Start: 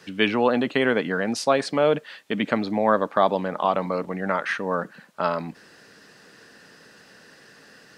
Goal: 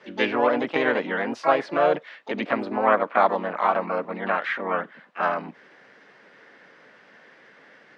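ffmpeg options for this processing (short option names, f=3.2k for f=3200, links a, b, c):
-filter_complex "[0:a]lowshelf=f=310:g=-9.5,asplit=3[a][b][c];[b]asetrate=52444,aresample=44100,atempo=0.840896,volume=-2dB[d];[c]asetrate=88200,aresample=44100,atempo=0.5,volume=-10dB[e];[a][d][e]amix=inputs=3:normalize=0,highpass=120,lowpass=2.1k"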